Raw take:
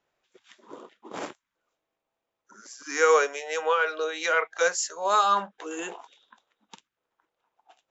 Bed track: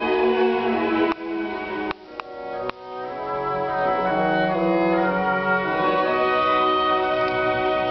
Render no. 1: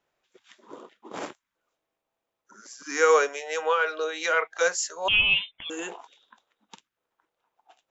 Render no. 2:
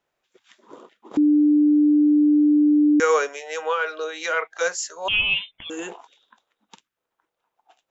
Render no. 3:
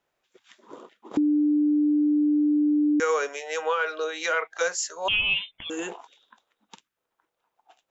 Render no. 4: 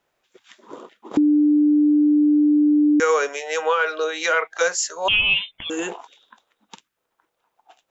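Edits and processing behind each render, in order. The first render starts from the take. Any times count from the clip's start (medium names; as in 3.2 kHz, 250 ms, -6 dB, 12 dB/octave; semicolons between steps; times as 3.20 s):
2.71–3.29 s: peaking EQ 160 Hz +9 dB 1 oct; 5.08–5.70 s: frequency inversion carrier 3.8 kHz
1.17–3.00 s: bleep 297 Hz -13 dBFS; 5.49–5.93 s: bass shelf 380 Hz +6.5 dB
compression, threshold -20 dBFS, peak gain reduction 6 dB
trim +5.5 dB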